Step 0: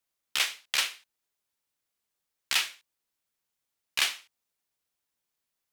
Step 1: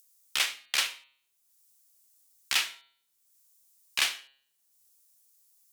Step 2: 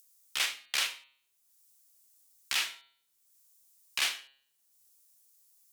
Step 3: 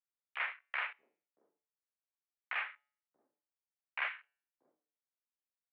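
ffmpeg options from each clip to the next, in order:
-filter_complex "[0:a]bandreject=f=136:t=h:w=4,bandreject=f=272:t=h:w=4,bandreject=f=408:t=h:w=4,bandreject=f=544:t=h:w=4,bandreject=f=680:t=h:w=4,bandreject=f=816:t=h:w=4,bandreject=f=952:t=h:w=4,bandreject=f=1088:t=h:w=4,bandreject=f=1224:t=h:w=4,bandreject=f=1360:t=h:w=4,bandreject=f=1496:t=h:w=4,bandreject=f=1632:t=h:w=4,bandreject=f=1768:t=h:w=4,bandreject=f=1904:t=h:w=4,bandreject=f=2040:t=h:w=4,bandreject=f=2176:t=h:w=4,bandreject=f=2312:t=h:w=4,bandreject=f=2448:t=h:w=4,bandreject=f=2584:t=h:w=4,bandreject=f=2720:t=h:w=4,bandreject=f=2856:t=h:w=4,bandreject=f=2992:t=h:w=4,bandreject=f=3128:t=h:w=4,bandreject=f=3264:t=h:w=4,bandreject=f=3400:t=h:w=4,bandreject=f=3536:t=h:w=4,bandreject=f=3672:t=h:w=4,bandreject=f=3808:t=h:w=4,bandreject=f=3944:t=h:w=4,bandreject=f=4080:t=h:w=4,bandreject=f=4216:t=h:w=4,bandreject=f=4352:t=h:w=4,bandreject=f=4488:t=h:w=4,acrossover=split=5700[s0][s1];[s1]acompressor=mode=upward:threshold=0.00447:ratio=2.5[s2];[s0][s2]amix=inputs=2:normalize=0"
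-af "alimiter=limit=0.141:level=0:latency=1:release=30"
-filter_complex "[0:a]acrossover=split=520[s0][s1];[s0]adelay=630[s2];[s2][s1]amix=inputs=2:normalize=0,afwtdn=0.00631,highpass=f=400:t=q:w=0.5412,highpass=f=400:t=q:w=1.307,lowpass=f=2300:t=q:w=0.5176,lowpass=f=2300:t=q:w=0.7071,lowpass=f=2300:t=q:w=1.932,afreqshift=-97"

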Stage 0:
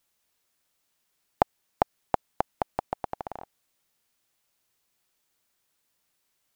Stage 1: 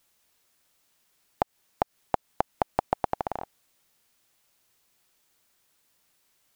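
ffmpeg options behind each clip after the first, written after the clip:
-af "alimiter=limit=0.251:level=0:latency=1:release=168,volume=2"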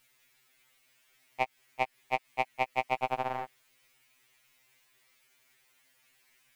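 -af "aeval=exprs='0.531*sin(PI/2*1.58*val(0)/0.531)':c=same,equalizer=f=2200:t=o:w=0.9:g=11.5,afftfilt=real='re*2.45*eq(mod(b,6),0)':imag='im*2.45*eq(mod(b,6),0)':win_size=2048:overlap=0.75,volume=0.501"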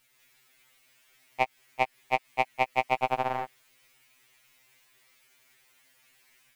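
-af "dynaudnorm=f=100:g=3:m=1.58"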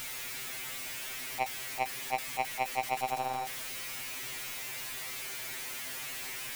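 -af "aeval=exprs='val(0)+0.5*0.0501*sgn(val(0))':c=same,volume=0.398"

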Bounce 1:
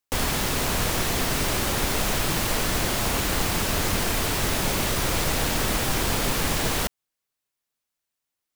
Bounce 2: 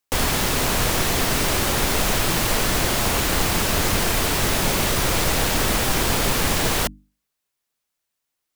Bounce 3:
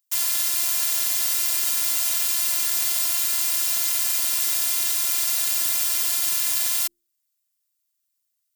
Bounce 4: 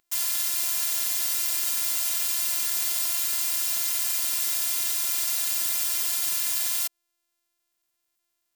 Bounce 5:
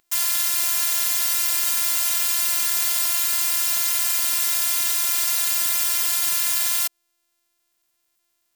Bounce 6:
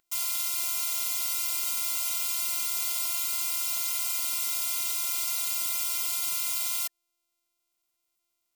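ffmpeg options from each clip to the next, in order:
-af "bandreject=f=50:t=h:w=6,bandreject=f=100:t=h:w=6,bandreject=f=150:t=h:w=6,bandreject=f=200:t=h:w=6,bandreject=f=250:t=h:w=6,bandreject=f=300:t=h:w=6,volume=1.58"
-af "aderivative,afftfilt=real='hypot(re,im)*cos(PI*b)':imag='0':win_size=512:overlap=0.75,volume=1.68"
-filter_complex "[0:a]acrossover=split=170|1200[s0][s1][s2];[s1]acompressor=mode=upward:threshold=0.00224:ratio=2.5[s3];[s0][s3][s2]amix=inputs=3:normalize=0,acrusher=bits=9:mix=0:aa=0.000001,volume=0.668"
-af "acontrast=59"
-af "asuperstop=centerf=1700:order=12:qfactor=7.7,volume=0.398"

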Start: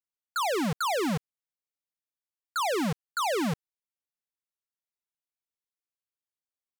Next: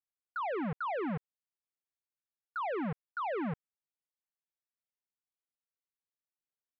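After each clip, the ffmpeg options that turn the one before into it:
-af "lowpass=f=2200:w=0.5412,lowpass=f=2200:w=1.3066,volume=0.473"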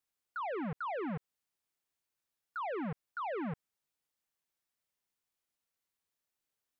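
-af "alimiter=level_in=7.5:limit=0.0631:level=0:latency=1,volume=0.133,volume=2.24"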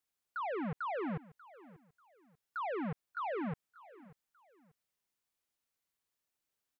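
-af "aecho=1:1:589|1178:0.106|0.0318"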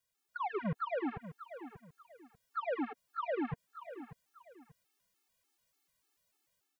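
-af "alimiter=level_in=7.5:limit=0.0631:level=0:latency=1:release=62,volume=0.133,dynaudnorm=f=140:g=5:m=1.88,afftfilt=real='re*gt(sin(2*PI*3.4*pts/sr)*(1-2*mod(floor(b*sr/1024/230),2)),0)':imag='im*gt(sin(2*PI*3.4*pts/sr)*(1-2*mod(floor(b*sr/1024/230),2)),0)':win_size=1024:overlap=0.75,volume=2"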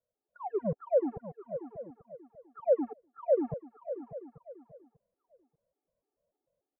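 -af "lowpass=f=560:t=q:w=4.9,aecho=1:1:838:0.141"

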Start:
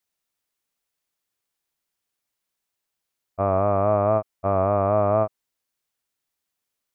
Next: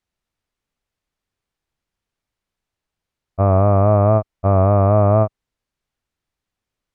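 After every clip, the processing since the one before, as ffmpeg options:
-af "aemphasis=mode=reproduction:type=bsi,volume=1.41"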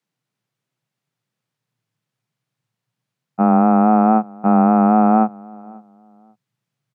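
-filter_complex "[0:a]afreqshift=110,asubboost=boost=5.5:cutoff=120,asplit=2[s0][s1];[s1]adelay=540,lowpass=f=1700:p=1,volume=0.0631,asplit=2[s2][s3];[s3]adelay=540,lowpass=f=1700:p=1,volume=0.25[s4];[s0][s2][s4]amix=inputs=3:normalize=0,volume=1.12"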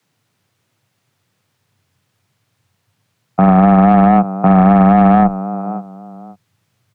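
-af "asoftclip=type=tanh:threshold=0.447,afreqshift=-20,alimiter=level_in=6.68:limit=0.891:release=50:level=0:latency=1,volume=0.891"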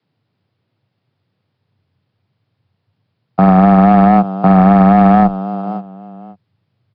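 -filter_complex "[0:a]asplit=2[s0][s1];[s1]adynamicsmooth=sensitivity=8:basefreq=930,volume=1.33[s2];[s0][s2]amix=inputs=2:normalize=0,aresample=11025,aresample=44100,volume=0.473"

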